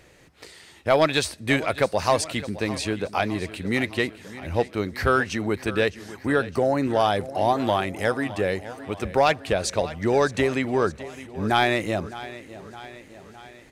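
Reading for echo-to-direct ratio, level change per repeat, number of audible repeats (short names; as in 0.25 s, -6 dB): -14.0 dB, -4.5 dB, 5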